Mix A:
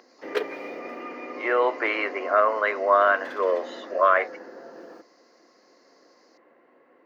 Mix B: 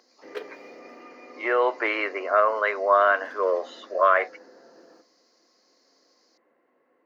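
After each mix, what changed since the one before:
background -10.0 dB; reverb: on, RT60 0.60 s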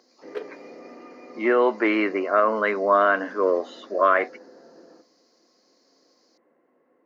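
speech: remove HPF 470 Hz 24 dB/oct; background: add tilt -2.5 dB/oct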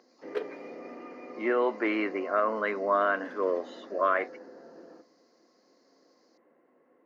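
speech -7.0 dB

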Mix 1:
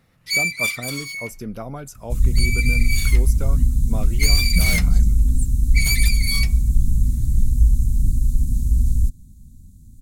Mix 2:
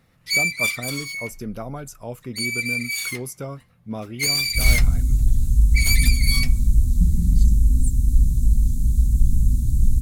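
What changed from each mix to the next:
second sound: entry +2.45 s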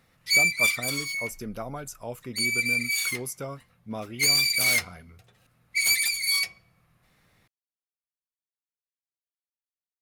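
second sound: muted; master: add low shelf 390 Hz -7 dB

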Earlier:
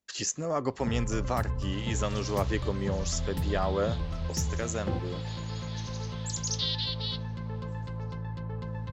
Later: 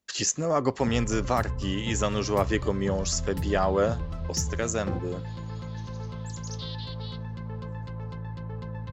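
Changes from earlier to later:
speech +5.0 dB; second sound -10.0 dB

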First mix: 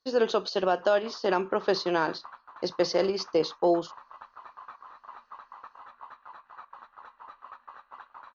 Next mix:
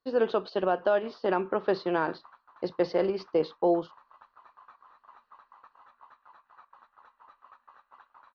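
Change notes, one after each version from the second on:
speech: add air absorption 330 m; background -8.5 dB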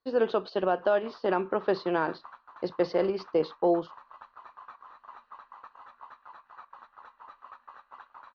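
background +6.5 dB

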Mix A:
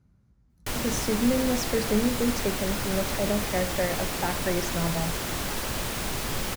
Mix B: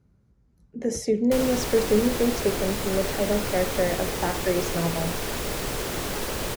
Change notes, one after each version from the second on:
background: entry +0.65 s; master: add bell 440 Hz +7 dB 0.74 oct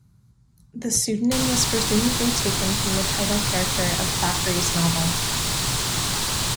speech: remove LPF 7100 Hz 12 dB/oct; master: add graphic EQ 125/500/1000/4000/8000 Hz +11/-9/+7/+10/+10 dB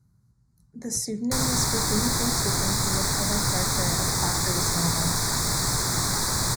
speech -6.5 dB; master: add Butterworth band-stop 2900 Hz, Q 1.4

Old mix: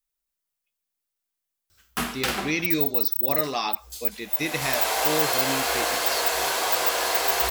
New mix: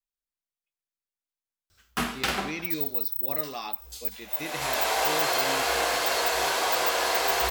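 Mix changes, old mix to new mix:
speech -8.5 dB; second sound: send on; master: add high shelf 8800 Hz -8 dB

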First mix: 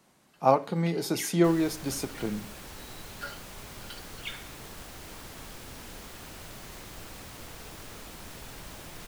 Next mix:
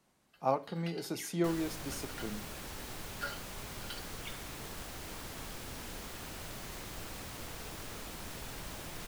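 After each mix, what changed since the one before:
speech -9.0 dB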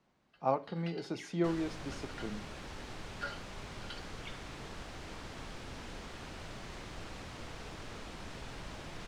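speech: add high shelf 9100 Hz -9 dB; master: add air absorption 94 m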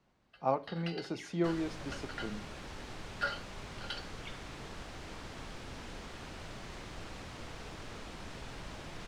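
first sound +6.5 dB

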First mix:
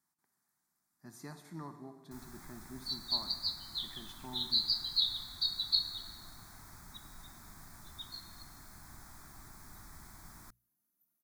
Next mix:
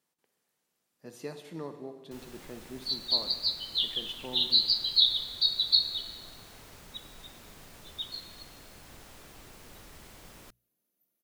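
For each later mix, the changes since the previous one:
master: remove fixed phaser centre 1200 Hz, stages 4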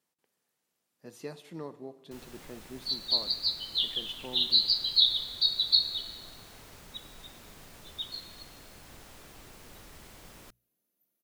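speech: send -8.0 dB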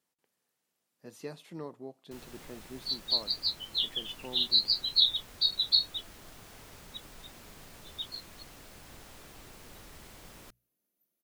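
reverb: off

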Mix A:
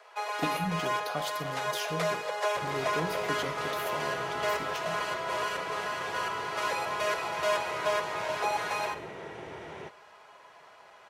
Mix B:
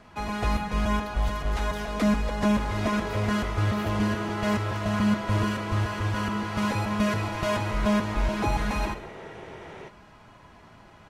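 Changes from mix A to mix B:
speech -10.5 dB; first sound: remove steep high-pass 410 Hz 72 dB/oct; master: add low shelf 140 Hz +3.5 dB

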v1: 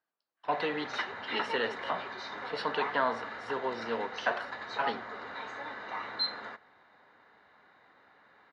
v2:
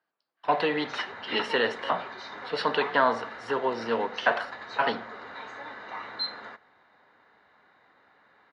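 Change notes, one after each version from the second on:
speech +6.5 dB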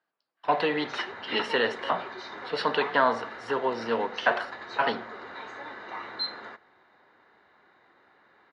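background: add bell 360 Hz +9 dB 0.24 oct

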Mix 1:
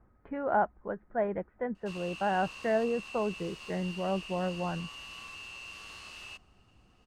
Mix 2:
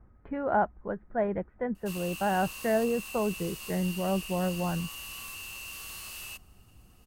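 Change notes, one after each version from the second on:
speech: add low shelf 200 Hz +8.5 dB; master: remove air absorption 120 m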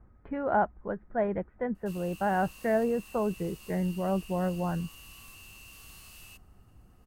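background -9.5 dB

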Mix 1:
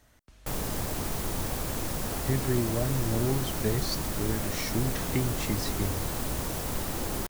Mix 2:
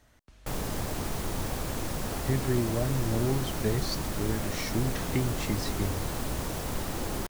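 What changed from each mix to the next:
master: add high shelf 8400 Hz -6 dB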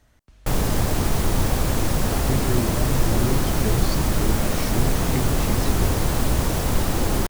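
background +9.0 dB; master: add low shelf 150 Hz +5 dB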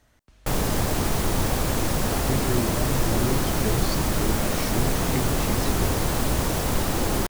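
master: add low shelf 150 Hz -5 dB

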